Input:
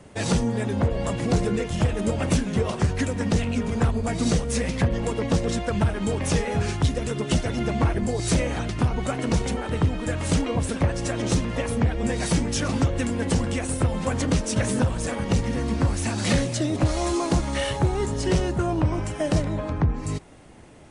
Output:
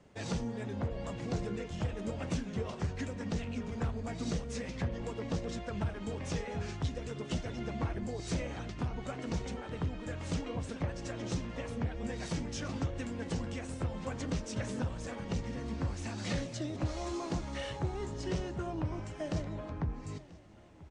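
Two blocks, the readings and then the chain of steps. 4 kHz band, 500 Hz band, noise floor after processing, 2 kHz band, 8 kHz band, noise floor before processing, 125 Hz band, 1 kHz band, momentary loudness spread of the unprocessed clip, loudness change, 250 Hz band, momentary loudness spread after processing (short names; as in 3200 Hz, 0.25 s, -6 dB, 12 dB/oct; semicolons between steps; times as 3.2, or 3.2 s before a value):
-13.0 dB, -13.0 dB, -46 dBFS, -13.0 dB, -16.0 dB, -32 dBFS, -13.0 dB, -13.0 dB, 3 LU, -13.0 dB, -13.0 dB, 3 LU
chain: flange 0.91 Hz, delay 3.8 ms, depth 9.3 ms, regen -80%; LPF 7300 Hz 24 dB/oct; on a send: feedback echo 0.988 s, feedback 55%, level -22 dB; on the sum: gain -8.5 dB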